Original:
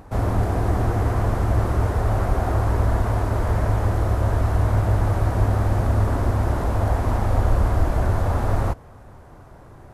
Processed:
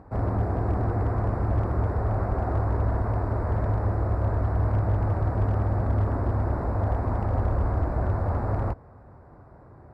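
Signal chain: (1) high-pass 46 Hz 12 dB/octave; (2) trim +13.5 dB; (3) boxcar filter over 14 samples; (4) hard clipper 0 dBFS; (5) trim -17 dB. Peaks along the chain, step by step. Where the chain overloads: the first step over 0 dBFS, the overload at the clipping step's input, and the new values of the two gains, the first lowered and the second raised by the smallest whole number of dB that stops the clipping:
-8.5 dBFS, +5.0 dBFS, +4.5 dBFS, 0.0 dBFS, -17.0 dBFS; step 2, 4.5 dB; step 2 +8.5 dB, step 5 -12 dB

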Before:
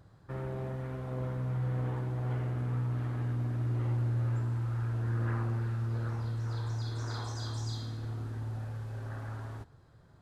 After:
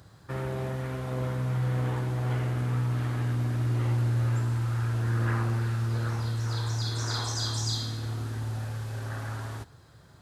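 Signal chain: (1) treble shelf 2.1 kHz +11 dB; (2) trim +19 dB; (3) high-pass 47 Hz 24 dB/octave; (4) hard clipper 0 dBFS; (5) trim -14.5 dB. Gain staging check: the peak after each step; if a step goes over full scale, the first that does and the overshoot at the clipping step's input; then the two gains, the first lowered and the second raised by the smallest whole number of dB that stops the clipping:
-22.0 dBFS, -3.0 dBFS, -3.5 dBFS, -3.5 dBFS, -18.0 dBFS; nothing clips

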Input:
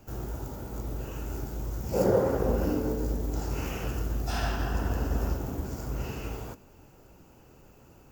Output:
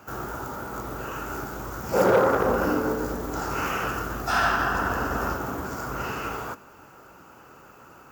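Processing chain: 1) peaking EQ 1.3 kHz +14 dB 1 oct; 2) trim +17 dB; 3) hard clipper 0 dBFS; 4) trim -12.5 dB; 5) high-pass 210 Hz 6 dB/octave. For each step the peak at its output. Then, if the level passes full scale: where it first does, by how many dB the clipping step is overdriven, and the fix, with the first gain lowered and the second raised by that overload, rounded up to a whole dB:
-10.5 dBFS, +6.5 dBFS, 0.0 dBFS, -12.5 dBFS, -9.5 dBFS; step 2, 6.5 dB; step 2 +10 dB, step 4 -5.5 dB

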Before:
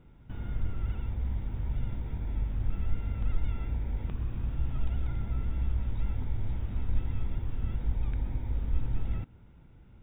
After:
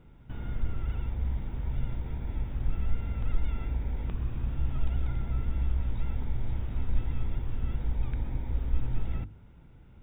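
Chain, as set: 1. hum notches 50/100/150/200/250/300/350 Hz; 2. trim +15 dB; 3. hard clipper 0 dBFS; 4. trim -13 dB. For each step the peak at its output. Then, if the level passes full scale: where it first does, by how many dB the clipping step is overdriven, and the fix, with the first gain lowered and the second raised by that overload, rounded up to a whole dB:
-16.5 dBFS, -1.5 dBFS, -1.5 dBFS, -14.5 dBFS; nothing clips

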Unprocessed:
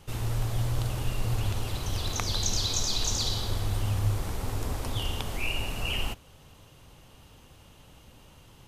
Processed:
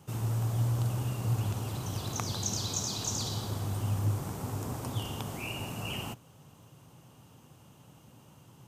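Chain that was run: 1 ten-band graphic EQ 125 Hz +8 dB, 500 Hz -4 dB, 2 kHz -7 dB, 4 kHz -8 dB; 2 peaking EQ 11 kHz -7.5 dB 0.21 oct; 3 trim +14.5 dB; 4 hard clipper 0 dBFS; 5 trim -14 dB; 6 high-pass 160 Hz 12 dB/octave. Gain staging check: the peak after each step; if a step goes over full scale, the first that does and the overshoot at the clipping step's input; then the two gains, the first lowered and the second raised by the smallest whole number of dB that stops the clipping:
-11.0 dBFS, -11.0 dBFS, +3.5 dBFS, 0.0 dBFS, -14.0 dBFS, -14.0 dBFS; step 3, 3.5 dB; step 3 +10.5 dB, step 5 -10 dB

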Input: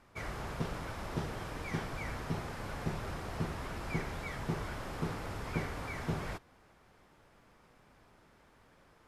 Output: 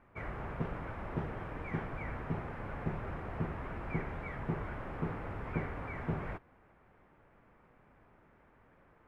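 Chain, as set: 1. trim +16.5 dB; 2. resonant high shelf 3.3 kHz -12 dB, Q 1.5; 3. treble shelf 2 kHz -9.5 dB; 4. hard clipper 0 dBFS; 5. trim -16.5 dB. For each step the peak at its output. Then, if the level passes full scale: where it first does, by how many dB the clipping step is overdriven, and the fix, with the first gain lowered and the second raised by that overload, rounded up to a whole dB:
-3.5 dBFS, -3.0 dBFS, -4.0 dBFS, -4.0 dBFS, -20.5 dBFS; nothing clips

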